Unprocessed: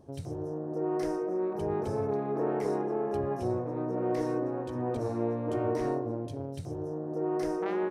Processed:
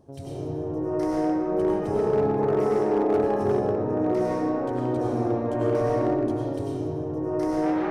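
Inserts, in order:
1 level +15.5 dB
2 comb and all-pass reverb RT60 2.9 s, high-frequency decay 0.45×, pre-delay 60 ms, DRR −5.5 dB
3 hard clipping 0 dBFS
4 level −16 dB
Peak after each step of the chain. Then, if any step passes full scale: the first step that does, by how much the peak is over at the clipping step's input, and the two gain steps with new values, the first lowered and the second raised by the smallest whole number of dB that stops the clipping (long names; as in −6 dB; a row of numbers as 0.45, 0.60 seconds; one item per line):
−1.5, +4.5, 0.0, −16.0 dBFS
step 2, 4.5 dB
step 1 +10.5 dB, step 4 −11 dB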